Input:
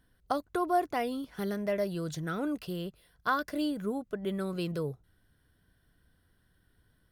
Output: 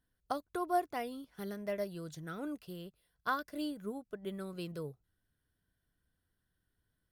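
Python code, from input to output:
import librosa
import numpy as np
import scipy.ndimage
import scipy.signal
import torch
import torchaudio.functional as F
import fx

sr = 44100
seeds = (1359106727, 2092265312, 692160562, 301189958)

y = fx.high_shelf(x, sr, hz=6400.0, db=4.5)
y = fx.upward_expand(y, sr, threshold_db=-43.0, expansion=1.5)
y = y * librosa.db_to_amplitude(-3.5)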